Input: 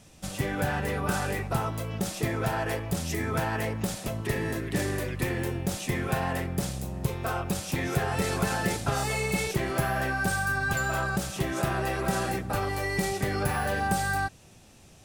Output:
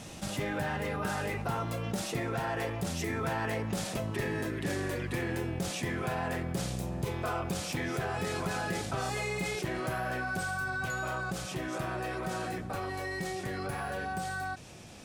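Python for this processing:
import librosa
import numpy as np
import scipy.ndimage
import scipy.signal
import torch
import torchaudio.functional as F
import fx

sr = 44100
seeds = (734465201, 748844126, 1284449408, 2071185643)

y = fx.doppler_pass(x, sr, speed_mps=14, closest_m=18.0, pass_at_s=3.64)
y = fx.high_shelf(y, sr, hz=8900.0, db=-8.0)
y = fx.rider(y, sr, range_db=5, speed_s=0.5)
y = fx.low_shelf(y, sr, hz=63.0, db=-11.0)
y = fx.env_flatten(y, sr, amount_pct=50)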